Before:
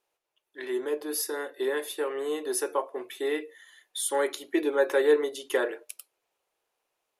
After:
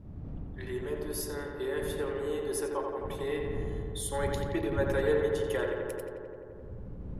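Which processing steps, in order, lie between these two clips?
wind on the microphone 140 Hz −36 dBFS
feedback echo with a low-pass in the loop 87 ms, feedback 84%, low-pass 3,100 Hz, level −4 dB
level −7 dB

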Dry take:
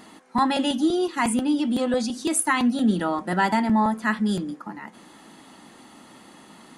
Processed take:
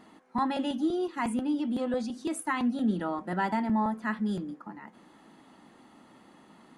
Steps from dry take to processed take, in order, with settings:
high-shelf EQ 3,100 Hz −10.5 dB
level −6.5 dB

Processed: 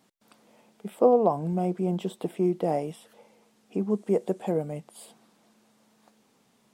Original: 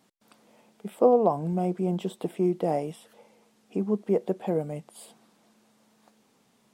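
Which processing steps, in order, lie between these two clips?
0:03.90–0:04.52: parametric band 8,200 Hz +9 dB 0.85 octaves

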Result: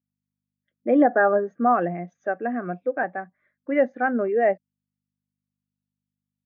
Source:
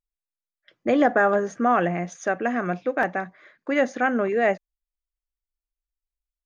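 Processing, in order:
mains hum 50 Hz, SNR 31 dB
band-pass filter 150–3,600 Hz
every bin expanded away from the loudest bin 1.5 to 1

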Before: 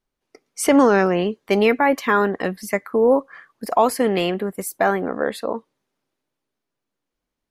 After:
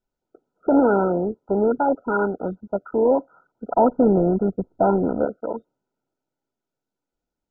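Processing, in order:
0:03.73–0:05.25: spectral tilt −3.5 dB per octave
level −2.5 dB
MP2 8 kbit/s 16,000 Hz

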